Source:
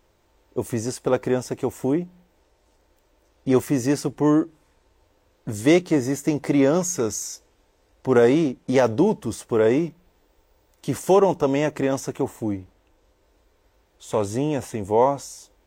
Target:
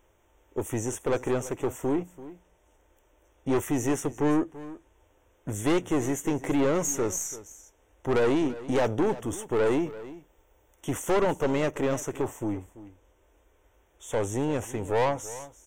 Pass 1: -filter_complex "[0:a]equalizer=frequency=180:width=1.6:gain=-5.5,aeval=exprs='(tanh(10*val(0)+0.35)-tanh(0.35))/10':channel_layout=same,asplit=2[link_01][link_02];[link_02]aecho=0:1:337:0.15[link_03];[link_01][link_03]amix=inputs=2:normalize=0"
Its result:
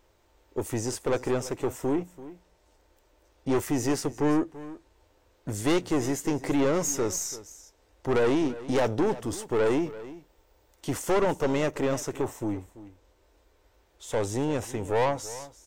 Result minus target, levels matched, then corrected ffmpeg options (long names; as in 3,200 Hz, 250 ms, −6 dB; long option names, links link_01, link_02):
4,000 Hz band +3.0 dB
-filter_complex "[0:a]asuperstop=centerf=4500:order=8:qfactor=2.1,equalizer=frequency=180:width=1.6:gain=-5.5,aeval=exprs='(tanh(10*val(0)+0.35)-tanh(0.35))/10':channel_layout=same,asplit=2[link_01][link_02];[link_02]aecho=0:1:337:0.15[link_03];[link_01][link_03]amix=inputs=2:normalize=0"